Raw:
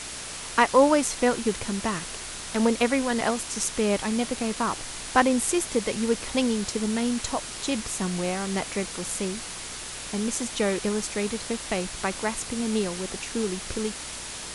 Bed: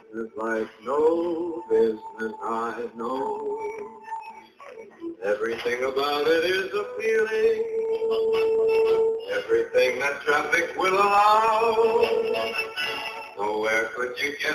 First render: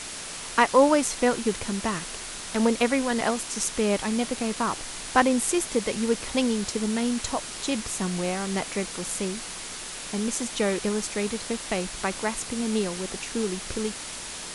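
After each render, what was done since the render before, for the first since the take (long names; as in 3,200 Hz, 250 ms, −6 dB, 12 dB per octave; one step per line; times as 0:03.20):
hum removal 60 Hz, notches 2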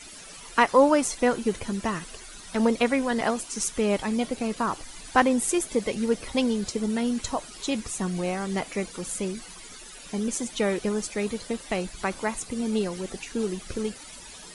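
broadband denoise 14 dB, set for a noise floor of −37 dBFS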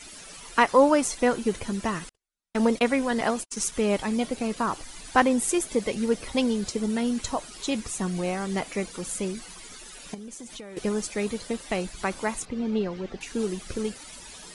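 0:02.09–0:03.72: noise gate −36 dBFS, range −49 dB
0:10.14–0:10.77: downward compressor 10 to 1, threshold −37 dBFS
0:12.45–0:13.21: high-frequency loss of the air 210 metres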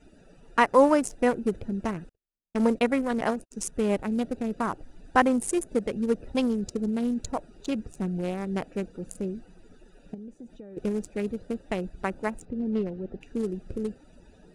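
adaptive Wiener filter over 41 samples
dynamic equaliser 4,100 Hz, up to −4 dB, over −43 dBFS, Q 0.9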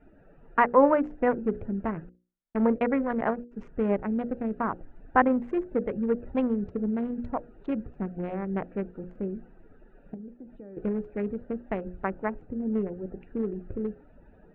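low-pass filter 2,000 Hz 24 dB per octave
mains-hum notches 60/120/180/240/300/360/420/480/540 Hz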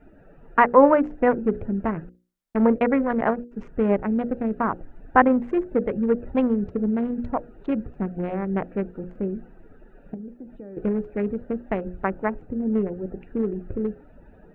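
level +5 dB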